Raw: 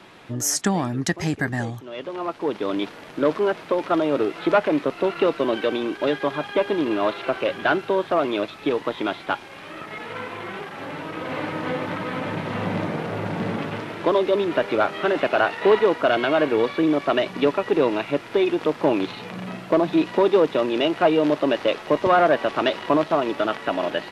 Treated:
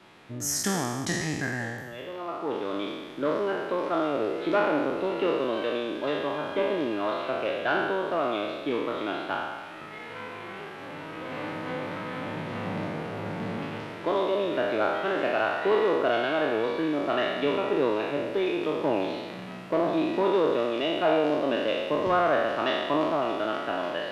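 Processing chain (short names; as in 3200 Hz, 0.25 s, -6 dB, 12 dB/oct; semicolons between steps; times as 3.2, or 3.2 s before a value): spectral trails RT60 1.45 s; gain -9 dB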